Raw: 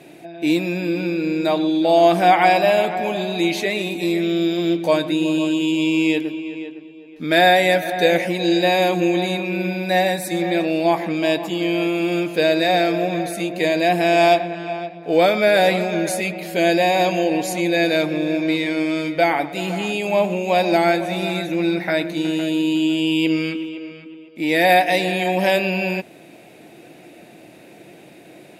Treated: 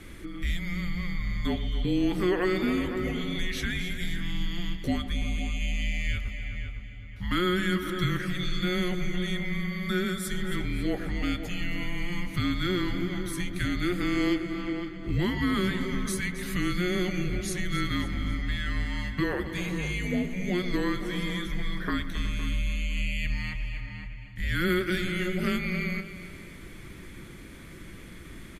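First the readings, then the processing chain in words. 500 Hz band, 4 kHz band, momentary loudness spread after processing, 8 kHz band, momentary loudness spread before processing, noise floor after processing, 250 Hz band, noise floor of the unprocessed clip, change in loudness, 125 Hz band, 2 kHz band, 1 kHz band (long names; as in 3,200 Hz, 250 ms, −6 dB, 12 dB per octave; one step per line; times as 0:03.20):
−16.0 dB, −9.5 dB, 13 LU, −7.5 dB, 9 LU, −44 dBFS, −9.5 dB, −45 dBFS, −11.0 dB, −2.0 dB, −10.0 dB, −19.5 dB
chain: downward compressor 2 to 1, threshold −33 dBFS, peak gain reduction 13 dB
frequency shifter −360 Hz
on a send: repeating echo 272 ms, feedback 46%, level −12.5 dB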